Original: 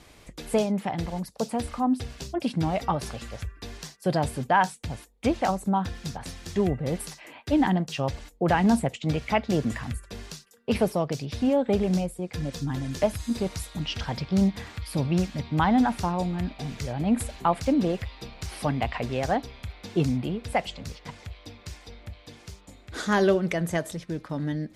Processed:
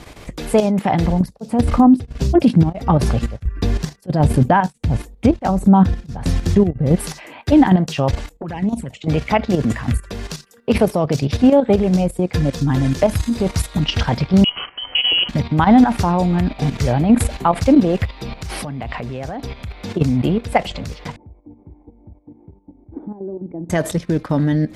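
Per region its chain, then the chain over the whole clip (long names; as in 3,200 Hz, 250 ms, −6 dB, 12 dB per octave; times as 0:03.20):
0:01.07–0:06.96: low-shelf EQ 400 Hz +11 dB + tremolo along a rectified sine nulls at 1.5 Hz
0:08.29–0:09.08: flanger swept by the level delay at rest 6.3 ms, full sweep at −16.5 dBFS + downward compressor 8 to 1, threshold −27 dBFS + tuned comb filter 200 Hz, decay 0.42 s, harmonics odd, mix 40%
0:14.44–0:15.29: noise gate −41 dBFS, range −11 dB + downward compressor 10 to 1, threshold −24 dBFS + voice inversion scrambler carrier 3,100 Hz
0:18.05–0:20.01: parametric band 150 Hz +3 dB 1.4 octaves + downward compressor 10 to 1, threshold −31 dBFS
0:21.16–0:23.70: downward compressor 8 to 1, threshold −29 dBFS + formant resonators in series u
whole clip: high-shelf EQ 2,400 Hz −5.5 dB; output level in coarse steps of 11 dB; boost into a limiter +20 dB; level −3 dB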